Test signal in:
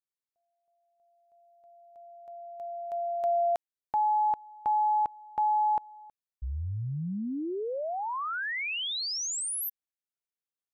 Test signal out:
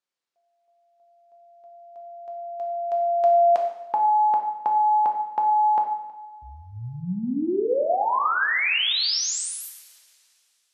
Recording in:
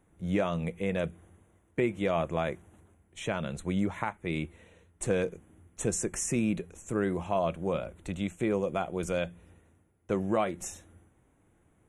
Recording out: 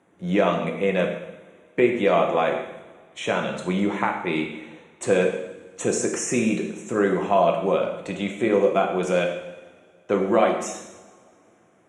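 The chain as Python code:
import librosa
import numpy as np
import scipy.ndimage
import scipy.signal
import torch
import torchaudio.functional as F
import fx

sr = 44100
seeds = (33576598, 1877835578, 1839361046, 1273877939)

y = fx.bandpass_edges(x, sr, low_hz=240.0, high_hz=6100.0)
y = fx.rev_double_slope(y, sr, seeds[0], early_s=0.9, late_s=2.8, knee_db=-20, drr_db=1.5)
y = y * librosa.db_to_amplitude(8.0)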